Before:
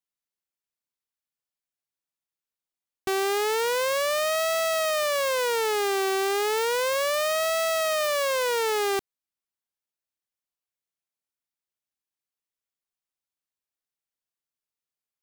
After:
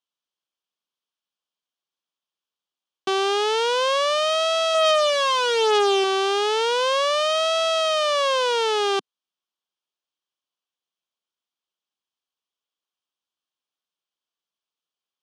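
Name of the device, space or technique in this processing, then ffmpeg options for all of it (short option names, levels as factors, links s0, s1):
television speaker: -filter_complex "[0:a]asettb=1/sr,asplit=3[s0][s1][s2];[s0]atrim=end=4.744[s3];[s1]atrim=start=4.74:end=6.04,asetpts=PTS-STARTPTS,afade=t=in:d=0.004:c=qsin,afade=t=out:st=1.296:d=0.004:c=qsin,aecho=1:1:4.8:0.63,atrim=end_sample=57330[s4];[s2]atrim=start=6.036[s5];[s3][s4]acrossfade=d=0.004:c1=hsin:c2=qsin[s6];[s6][s5]acrossfade=d=0.004:c1=qsin:c2=hsin,highpass=f=180:w=0.5412,highpass=f=180:w=1.3066,equalizer=f=250:t=q:w=4:g=-3,equalizer=f=1100:t=q:w=4:g=5,equalizer=f=2000:t=q:w=4:g=-8,equalizer=f=3200:t=q:w=4:g=9,equalizer=f=7500:t=q:w=4:g=-6,lowpass=f=7700:w=0.5412,lowpass=f=7700:w=1.3066,volume=1.41"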